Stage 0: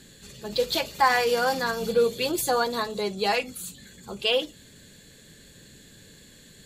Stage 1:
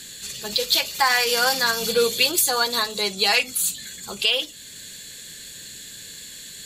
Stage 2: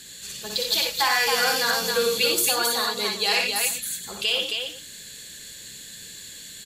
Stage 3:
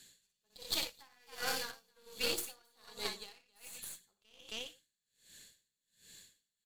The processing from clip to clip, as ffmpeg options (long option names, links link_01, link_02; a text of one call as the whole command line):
ffmpeg -i in.wav -af "tiltshelf=frequency=1400:gain=-8.5,alimiter=limit=-14.5dB:level=0:latency=1:release=500,volume=7.5dB" out.wav
ffmpeg -i in.wav -af "aecho=1:1:60|88|269|388:0.596|0.447|0.631|0.158,volume=-4.5dB" out.wav
ffmpeg -i in.wav -af "aeval=exprs='0.398*(cos(1*acos(clip(val(0)/0.398,-1,1)))-cos(1*PI/2))+0.0891*(cos(3*acos(clip(val(0)/0.398,-1,1)))-cos(3*PI/2))+0.0224*(cos(6*acos(clip(val(0)/0.398,-1,1)))-cos(6*PI/2))':channel_layout=same,aeval=exprs='val(0)*pow(10,-35*(0.5-0.5*cos(2*PI*1.3*n/s))/20)':channel_layout=same,volume=-5.5dB" out.wav